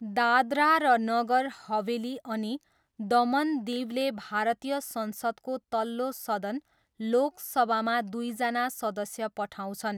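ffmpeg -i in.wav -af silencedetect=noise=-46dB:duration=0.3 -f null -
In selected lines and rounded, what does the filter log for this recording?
silence_start: 2.57
silence_end: 2.99 | silence_duration: 0.42
silence_start: 6.59
silence_end: 7.00 | silence_duration: 0.41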